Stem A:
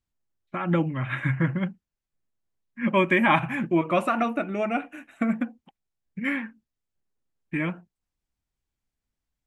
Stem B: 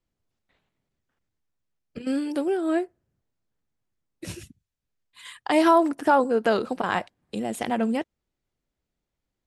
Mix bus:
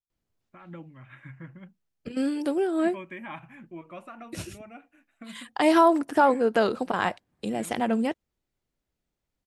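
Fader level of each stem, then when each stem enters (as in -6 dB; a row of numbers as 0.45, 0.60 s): -19.5, -0.5 dB; 0.00, 0.10 s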